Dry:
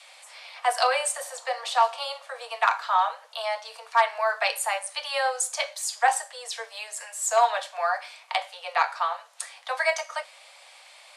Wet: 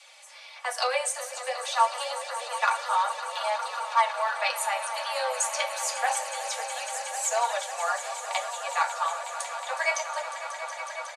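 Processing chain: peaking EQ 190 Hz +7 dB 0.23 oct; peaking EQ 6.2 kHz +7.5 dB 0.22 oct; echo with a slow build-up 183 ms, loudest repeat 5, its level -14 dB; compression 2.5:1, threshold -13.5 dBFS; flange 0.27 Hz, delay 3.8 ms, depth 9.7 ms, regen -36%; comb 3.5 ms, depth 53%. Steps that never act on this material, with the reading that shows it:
peaking EQ 190 Hz: input has nothing below 430 Hz

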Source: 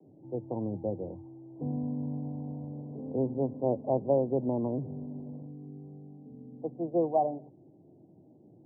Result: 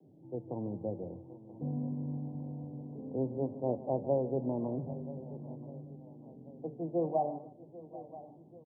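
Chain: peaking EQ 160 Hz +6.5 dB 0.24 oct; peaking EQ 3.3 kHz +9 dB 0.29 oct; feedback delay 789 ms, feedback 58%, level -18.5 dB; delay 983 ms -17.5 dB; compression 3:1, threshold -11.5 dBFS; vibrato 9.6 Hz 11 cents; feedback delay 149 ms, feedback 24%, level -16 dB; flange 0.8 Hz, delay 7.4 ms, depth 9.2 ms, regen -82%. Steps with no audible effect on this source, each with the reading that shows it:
peaking EQ 3.3 kHz: input has nothing above 960 Hz; compression, threshold -11.5 dBFS: peak at its input -14.0 dBFS

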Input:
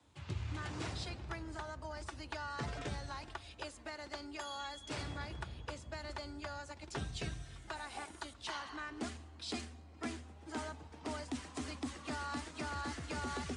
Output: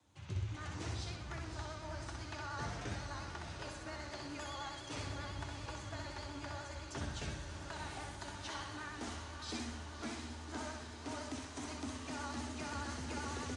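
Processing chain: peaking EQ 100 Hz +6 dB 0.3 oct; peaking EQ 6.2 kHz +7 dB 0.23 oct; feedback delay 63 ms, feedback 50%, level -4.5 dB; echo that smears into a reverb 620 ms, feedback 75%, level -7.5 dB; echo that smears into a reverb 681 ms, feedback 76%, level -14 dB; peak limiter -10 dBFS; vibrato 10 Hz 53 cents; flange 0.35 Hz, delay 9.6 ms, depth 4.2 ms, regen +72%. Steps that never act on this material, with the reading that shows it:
peak limiter -10 dBFS: peak at its input -22.5 dBFS

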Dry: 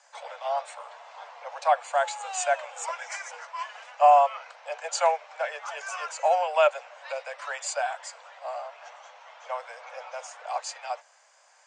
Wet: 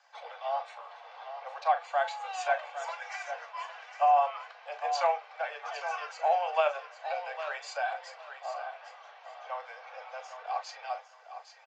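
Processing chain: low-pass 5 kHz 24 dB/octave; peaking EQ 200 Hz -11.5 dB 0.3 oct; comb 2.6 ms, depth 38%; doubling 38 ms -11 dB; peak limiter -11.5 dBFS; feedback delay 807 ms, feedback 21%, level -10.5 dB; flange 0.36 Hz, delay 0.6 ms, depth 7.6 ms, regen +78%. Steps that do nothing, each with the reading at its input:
peaking EQ 200 Hz: input has nothing below 430 Hz

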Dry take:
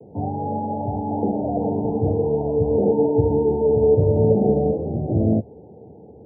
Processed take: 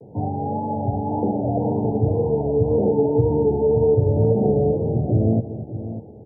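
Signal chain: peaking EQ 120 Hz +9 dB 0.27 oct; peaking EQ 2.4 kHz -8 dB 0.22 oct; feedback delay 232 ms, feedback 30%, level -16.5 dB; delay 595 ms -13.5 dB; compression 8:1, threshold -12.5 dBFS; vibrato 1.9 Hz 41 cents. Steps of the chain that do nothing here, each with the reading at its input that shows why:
peaking EQ 2.4 kHz: input has nothing above 960 Hz

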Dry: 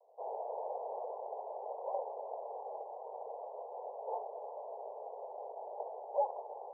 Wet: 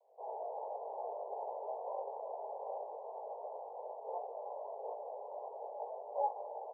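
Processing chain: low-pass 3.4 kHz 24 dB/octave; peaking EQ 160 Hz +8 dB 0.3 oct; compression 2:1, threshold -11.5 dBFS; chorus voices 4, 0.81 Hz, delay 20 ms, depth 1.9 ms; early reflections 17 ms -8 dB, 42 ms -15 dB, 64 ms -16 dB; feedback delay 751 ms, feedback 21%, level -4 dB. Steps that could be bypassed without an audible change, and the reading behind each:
low-pass 3.4 kHz: input has nothing above 1.1 kHz; peaking EQ 160 Hz: input has nothing below 340 Hz; compression, threshold -11.5 dBFS: peak at its input -21.5 dBFS

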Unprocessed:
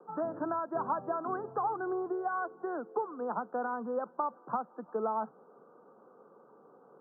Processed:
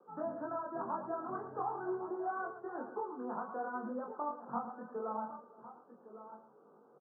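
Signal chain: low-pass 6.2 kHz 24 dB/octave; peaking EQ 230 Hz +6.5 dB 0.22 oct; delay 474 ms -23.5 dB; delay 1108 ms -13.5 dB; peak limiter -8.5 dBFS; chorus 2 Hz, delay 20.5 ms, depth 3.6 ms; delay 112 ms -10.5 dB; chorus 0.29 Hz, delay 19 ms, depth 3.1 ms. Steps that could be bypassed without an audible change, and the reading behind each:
low-pass 6.2 kHz: input has nothing above 1.6 kHz; peak limiter -8.5 dBFS: peak at its input -19.0 dBFS

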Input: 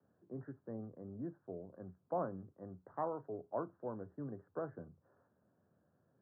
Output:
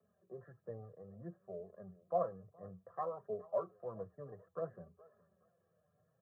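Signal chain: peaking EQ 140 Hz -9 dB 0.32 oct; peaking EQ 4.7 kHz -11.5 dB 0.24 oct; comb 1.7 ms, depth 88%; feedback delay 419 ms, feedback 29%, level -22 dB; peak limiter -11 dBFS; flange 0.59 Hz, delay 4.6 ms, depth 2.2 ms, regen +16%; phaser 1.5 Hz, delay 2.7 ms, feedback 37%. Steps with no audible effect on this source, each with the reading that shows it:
peaking EQ 4.7 kHz: input has nothing above 1.5 kHz; peak limiter -11 dBFS: peak at its input -23.0 dBFS

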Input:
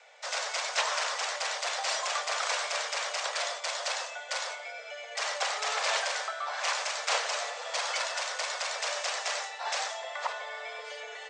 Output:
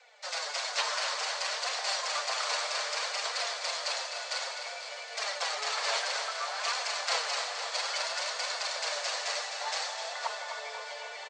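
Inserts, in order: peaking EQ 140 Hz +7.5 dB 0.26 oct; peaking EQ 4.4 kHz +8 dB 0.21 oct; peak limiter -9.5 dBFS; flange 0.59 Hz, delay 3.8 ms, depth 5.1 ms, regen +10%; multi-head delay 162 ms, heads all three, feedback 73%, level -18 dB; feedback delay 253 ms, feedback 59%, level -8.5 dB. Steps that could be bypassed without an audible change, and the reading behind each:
peaking EQ 140 Hz: input has nothing below 380 Hz; peak limiter -9.5 dBFS: peak at its input -12.5 dBFS

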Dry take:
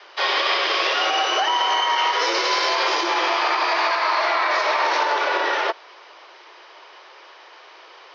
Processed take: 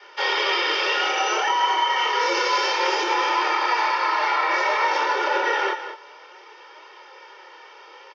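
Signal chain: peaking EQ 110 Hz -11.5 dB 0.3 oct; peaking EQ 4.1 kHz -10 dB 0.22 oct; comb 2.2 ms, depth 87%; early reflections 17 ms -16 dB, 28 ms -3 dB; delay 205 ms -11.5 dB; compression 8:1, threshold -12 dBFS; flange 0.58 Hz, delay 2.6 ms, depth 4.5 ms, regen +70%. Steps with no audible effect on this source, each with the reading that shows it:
peaking EQ 110 Hz: input has nothing below 270 Hz

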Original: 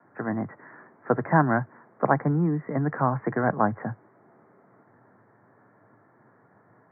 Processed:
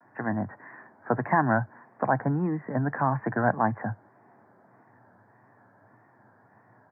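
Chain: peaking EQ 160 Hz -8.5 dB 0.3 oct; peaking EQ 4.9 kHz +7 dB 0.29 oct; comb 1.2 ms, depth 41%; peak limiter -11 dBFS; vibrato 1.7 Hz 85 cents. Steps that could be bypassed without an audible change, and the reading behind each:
peaking EQ 4.9 kHz: input has nothing above 2 kHz

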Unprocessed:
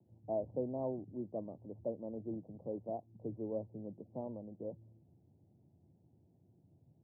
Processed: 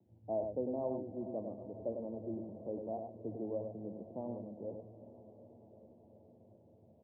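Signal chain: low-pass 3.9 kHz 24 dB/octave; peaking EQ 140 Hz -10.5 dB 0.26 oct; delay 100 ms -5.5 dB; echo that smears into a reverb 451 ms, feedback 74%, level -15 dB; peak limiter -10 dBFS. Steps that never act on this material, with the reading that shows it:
low-pass 3.9 kHz: input has nothing above 910 Hz; peak limiter -10 dBFS: peak at its input -25.0 dBFS

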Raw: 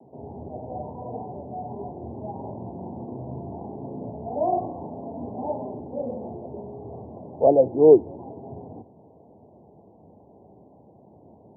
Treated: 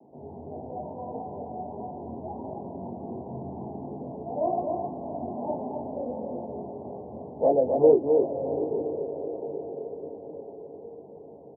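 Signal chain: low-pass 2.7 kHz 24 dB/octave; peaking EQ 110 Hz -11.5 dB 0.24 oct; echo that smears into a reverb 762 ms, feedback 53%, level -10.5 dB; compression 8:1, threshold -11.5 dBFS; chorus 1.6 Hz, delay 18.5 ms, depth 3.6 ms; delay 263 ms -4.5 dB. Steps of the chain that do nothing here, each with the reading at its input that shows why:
low-pass 2.7 kHz: input has nothing above 960 Hz

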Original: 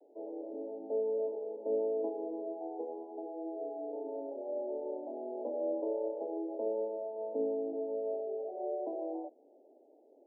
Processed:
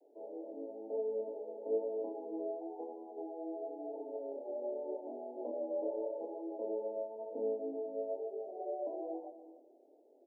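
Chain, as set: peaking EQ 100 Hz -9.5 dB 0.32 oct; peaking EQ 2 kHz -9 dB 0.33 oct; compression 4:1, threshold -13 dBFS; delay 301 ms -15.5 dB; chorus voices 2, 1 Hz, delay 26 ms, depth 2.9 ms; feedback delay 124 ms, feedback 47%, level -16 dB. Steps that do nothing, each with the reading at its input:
peaking EQ 100 Hz: input has nothing below 210 Hz; peaking EQ 2 kHz: input has nothing above 910 Hz; compression, threshold -13 dBFS: peak at its input -23.0 dBFS

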